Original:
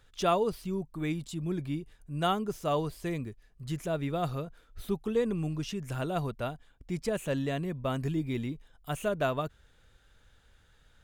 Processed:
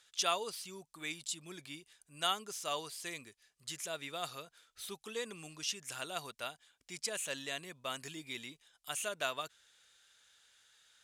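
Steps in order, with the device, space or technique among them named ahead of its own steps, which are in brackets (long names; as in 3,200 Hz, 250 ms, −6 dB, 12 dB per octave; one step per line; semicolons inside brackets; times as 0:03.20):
piezo pickup straight into a mixer (low-pass filter 7,900 Hz 12 dB per octave; first difference)
level +10.5 dB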